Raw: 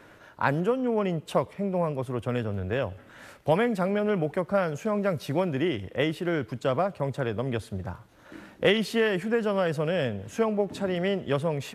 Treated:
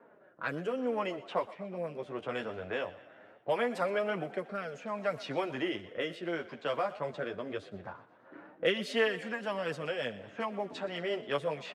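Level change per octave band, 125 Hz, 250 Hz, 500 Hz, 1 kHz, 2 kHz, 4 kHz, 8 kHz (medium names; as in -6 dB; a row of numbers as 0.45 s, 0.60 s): -16.0 dB, -11.0 dB, -7.5 dB, -5.5 dB, -4.0 dB, -4.0 dB, no reading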